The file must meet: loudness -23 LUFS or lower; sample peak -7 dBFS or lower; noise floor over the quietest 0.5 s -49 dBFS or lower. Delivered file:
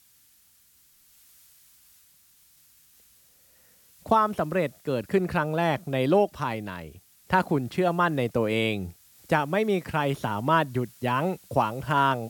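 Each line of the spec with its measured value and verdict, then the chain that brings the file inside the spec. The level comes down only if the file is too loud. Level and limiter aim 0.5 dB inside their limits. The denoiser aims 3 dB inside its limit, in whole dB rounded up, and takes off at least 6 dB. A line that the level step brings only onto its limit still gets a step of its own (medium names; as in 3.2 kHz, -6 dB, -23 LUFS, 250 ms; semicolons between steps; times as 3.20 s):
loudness -26.0 LUFS: pass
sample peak -7.5 dBFS: pass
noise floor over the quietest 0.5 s -60 dBFS: pass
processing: none needed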